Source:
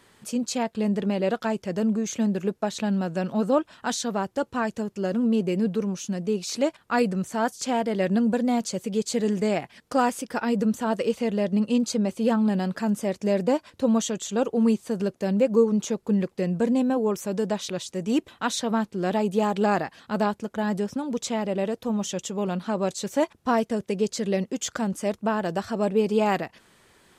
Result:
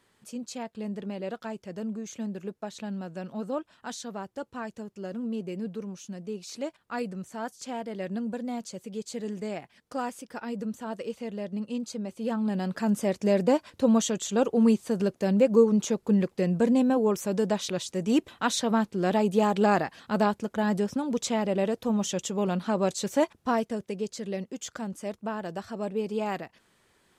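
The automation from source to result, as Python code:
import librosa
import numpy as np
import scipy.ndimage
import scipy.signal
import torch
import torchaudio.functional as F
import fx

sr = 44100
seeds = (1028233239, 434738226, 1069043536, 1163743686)

y = fx.gain(x, sr, db=fx.line((12.08, -10.0), (12.96, 0.0), (23.11, 0.0), (24.09, -8.0)))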